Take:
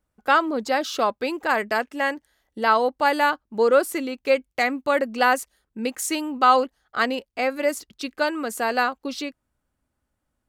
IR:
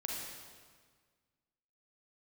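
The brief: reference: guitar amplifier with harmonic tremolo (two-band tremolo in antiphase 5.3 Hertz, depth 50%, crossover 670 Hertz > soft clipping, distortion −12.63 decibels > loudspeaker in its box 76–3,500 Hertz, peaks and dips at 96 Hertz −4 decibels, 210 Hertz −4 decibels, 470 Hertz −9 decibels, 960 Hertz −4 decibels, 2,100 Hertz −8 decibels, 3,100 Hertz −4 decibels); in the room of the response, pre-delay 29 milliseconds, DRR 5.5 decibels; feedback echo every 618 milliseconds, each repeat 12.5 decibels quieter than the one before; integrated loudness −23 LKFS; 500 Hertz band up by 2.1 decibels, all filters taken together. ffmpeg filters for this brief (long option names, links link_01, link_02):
-filter_complex "[0:a]equalizer=frequency=500:width_type=o:gain=7.5,aecho=1:1:618|1236|1854:0.237|0.0569|0.0137,asplit=2[link_01][link_02];[1:a]atrim=start_sample=2205,adelay=29[link_03];[link_02][link_03]afir=irnorm=-1:irlink=0,volume=-7dB[link_04];[link_01][link_04]amix=inputs=2:normalize=0,acrossover=split=670[link_05][link_06];[link_05]aeval=exprs='val(0)*(1-0.5/2+0.5/2*cos(2*PI*5.3*n/s))':channel_layout=same[link_07];[link_06]aeval=exprs='val(0)*(1-0.5/2-0.5/2*cos(2*PI*5.3*n/s))':channel_layout=same[link_08];[link_07][link_08]amix=inputs=2:normalize=0,asoftclip=threshold=-12dB,highpass=76,equalizer=frequency=96:width_type=q:width=4:gain=-4,equalizer=frequency=210:width_type=q:width=4:gain=-4,equalizer=frequency=470:width_type=q:width=4:gain=-9,equalizer=frequency=960:width_type=q:width=4:gain=-4,equalizer=frequency=2100:width_type=q:width=4:gain=-8,equalizer=frequency=3100:width_type=q:width=4:gain=-4,lowpass=frequency=3500:width=0.5412,lowpass=frequency=3500:width=1.3066,volume=3dB"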